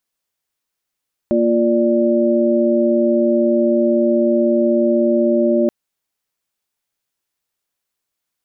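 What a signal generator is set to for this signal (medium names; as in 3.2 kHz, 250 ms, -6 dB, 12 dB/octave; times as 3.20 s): chord A#3/F4/D5 sine, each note -16.5 dBFS 4.38 s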